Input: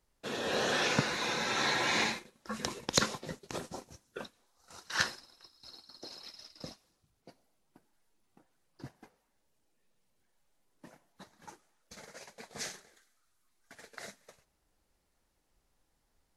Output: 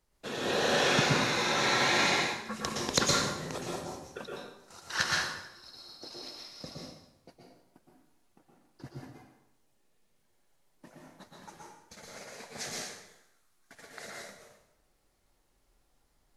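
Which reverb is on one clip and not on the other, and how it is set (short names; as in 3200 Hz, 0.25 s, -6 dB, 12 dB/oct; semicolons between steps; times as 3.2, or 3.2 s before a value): plate-style reverb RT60 0.85 s, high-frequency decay 0.8×, pre-delay 0.105 s, DRR -2.5 dB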